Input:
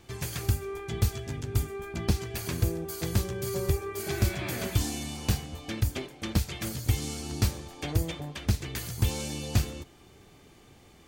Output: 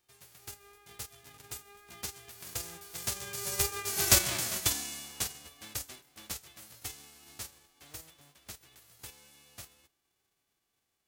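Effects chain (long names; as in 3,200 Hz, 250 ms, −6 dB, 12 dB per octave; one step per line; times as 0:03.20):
spectral envelope flattened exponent 0.3
source passing by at 0:04.13, 9 m/s, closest 2.8 metres
dynamic equaliser 6,800 Hz, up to +6 dB, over −51 dBFS, Q 1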